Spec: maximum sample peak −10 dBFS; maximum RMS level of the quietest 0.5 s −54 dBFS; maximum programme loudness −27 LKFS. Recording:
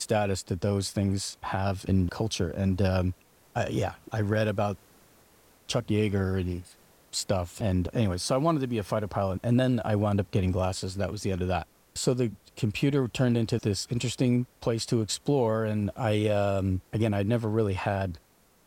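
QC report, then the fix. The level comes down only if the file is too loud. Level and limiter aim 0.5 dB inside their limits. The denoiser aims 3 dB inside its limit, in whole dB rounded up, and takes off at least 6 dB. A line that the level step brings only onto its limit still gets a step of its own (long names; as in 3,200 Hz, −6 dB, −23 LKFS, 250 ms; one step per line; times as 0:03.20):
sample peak −13.5 dBFS: in spec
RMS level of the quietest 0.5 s −60 dBFS: in spec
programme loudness −28.5 LKFS: in spec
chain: no processing needed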